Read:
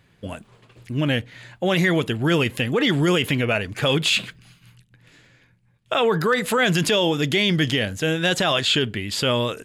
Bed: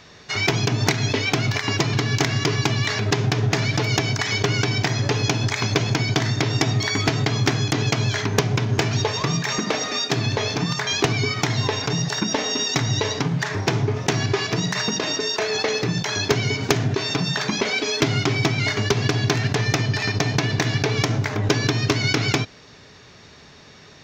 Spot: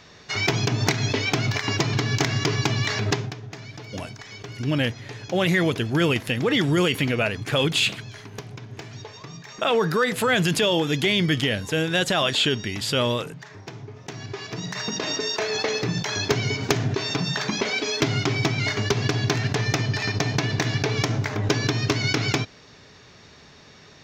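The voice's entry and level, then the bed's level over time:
3.70 s, −1.5 dB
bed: 0:03.12 −2 dB
0:03.40 −17.5 dB
0:13.93 −17.5 dB
0:15.10 −2.5 dB

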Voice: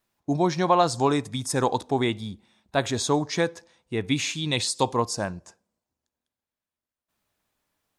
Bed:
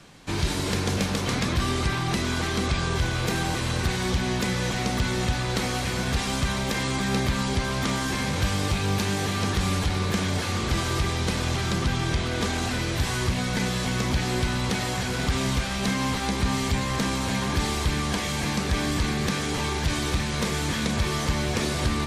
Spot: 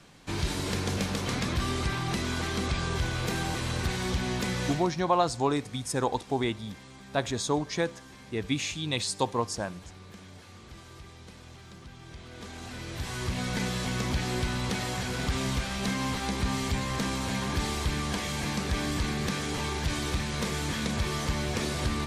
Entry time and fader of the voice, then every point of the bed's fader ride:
4.40 s, −4.5 dB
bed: 0:04.70 −4.5 dB
0:04.98 −22.5 dB
0:11.96 −22.5 dB
0:13.45 −4.5 dB

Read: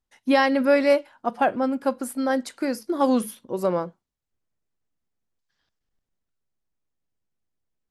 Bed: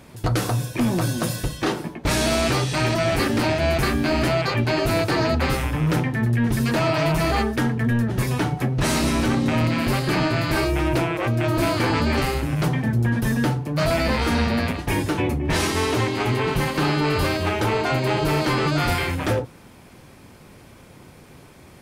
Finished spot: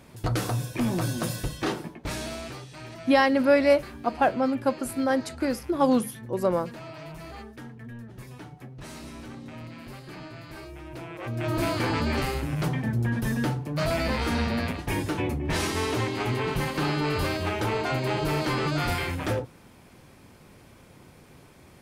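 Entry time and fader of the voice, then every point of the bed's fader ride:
2.80 s, −1.0 dB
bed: 0:01.73 −5 dB
0:02.68 −20.5 dB
0:10.88 −20.5 dB
0:11.52 −5.5 dB

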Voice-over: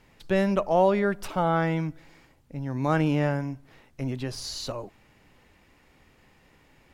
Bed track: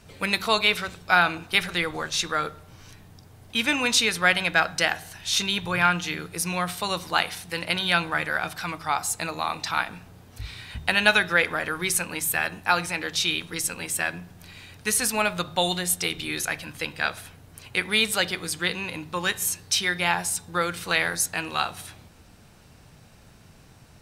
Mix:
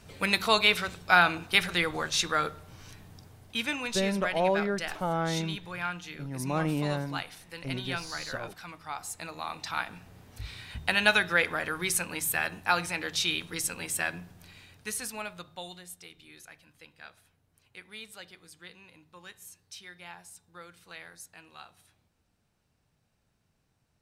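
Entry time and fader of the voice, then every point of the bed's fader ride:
3.65 s, −5.5 dB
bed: 0:03.23 −1.5 dB
0:04.03 −13 dB
0:08.84 −13 dB
0:10.20 −4 dB
0:14.22 −4 dB
0:16.06 −22.5 dB

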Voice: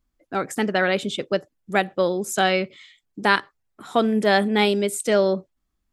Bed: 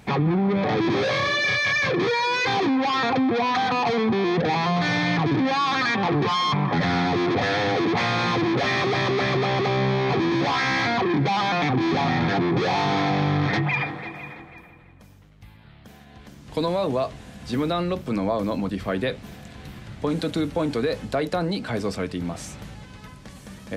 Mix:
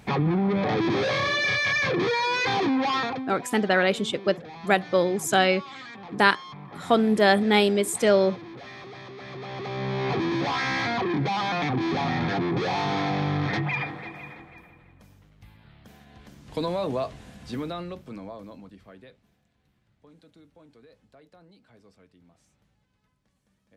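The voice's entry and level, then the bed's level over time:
2.95 s, −0.5 dB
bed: 0:02.97 −2 dB
0:03.40 −19.5 dB
0:09.16 −19.5 dB
0:10.06 −4 dB
0:17.29 −4 dB
0:19.54 −30 dB

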